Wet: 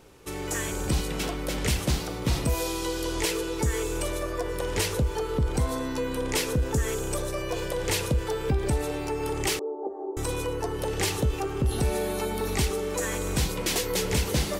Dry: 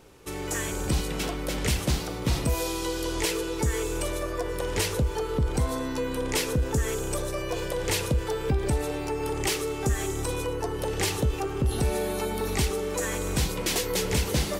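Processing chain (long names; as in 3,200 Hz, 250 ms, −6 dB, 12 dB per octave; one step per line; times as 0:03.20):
0:09.59–0:10.17: elliptic band-pass filter 320–900 Hz, stop band 50 dB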